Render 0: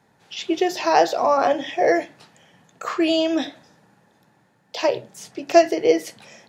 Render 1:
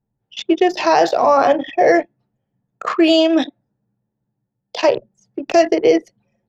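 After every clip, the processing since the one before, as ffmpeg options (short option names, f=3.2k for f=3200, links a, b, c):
-filter_complex "[0:a]anlmdn=100,acrossover=split=160[a][b];[b]alimiter=limit=-11dB:level=0:latency=1:release=29[c];[a][c]amix=inputs=2:normalize=0,volume=7dB"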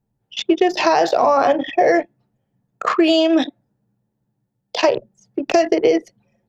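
-af "acompressor=threshold=-14dB:ratio=6,volume=3dB"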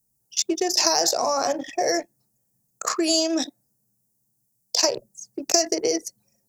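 -af "aexciter=amount=15.9:drive=7.4:freq=5k,volume=-9dB"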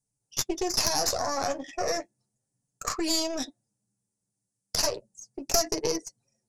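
-af "aresample=22050,aresample=44100,aeval=exprs='0.891*(cos(1*acos(clip(val(0)/0.891,-1,1)))-cos(1*PI/2))+0.282*(cos(4*acos(clip(val(0)/0.891,-1,1)))-cos(4*PI/2))':c=same,flanger=delay=6.8:depth=4.4:regen=-30:speed=0.34:shape=sinusoidal,volume=-2.5dB"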